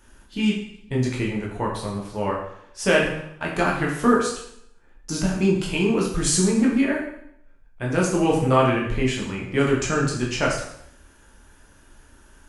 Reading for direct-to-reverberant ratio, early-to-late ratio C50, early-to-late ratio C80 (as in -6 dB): -3.5 dB, 4.0 dB, 7.0 dB